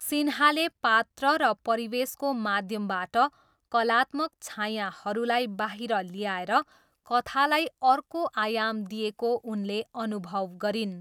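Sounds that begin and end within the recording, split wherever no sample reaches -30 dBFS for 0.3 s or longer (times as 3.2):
3.74–6.61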